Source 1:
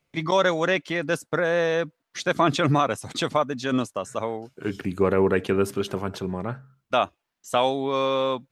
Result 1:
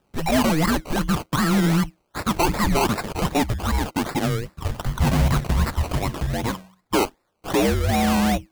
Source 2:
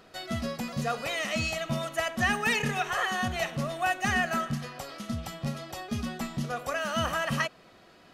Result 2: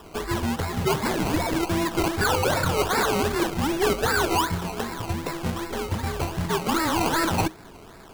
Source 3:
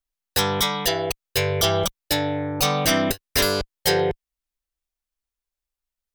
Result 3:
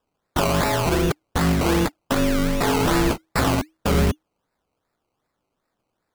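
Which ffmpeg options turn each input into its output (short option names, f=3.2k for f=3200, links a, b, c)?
-filter_complex "[0:a]asplit=2[a][b];[b]highpass=f=720:p=1,volume=24dB,asoftclip=type=tanh:threshold=-8dB[c];[a][c]amix=inputs=2:normalize=0,lowpass=f=1.2k:p=1,volume=-6dB,afreqshift=-320,aexciter=amount=4.6:drive=6:freq=6k,acrusher=samples=20:mix=1:aa=0.000001:lfo=1:lforange=12:lforate=2.6,volume=-2dB"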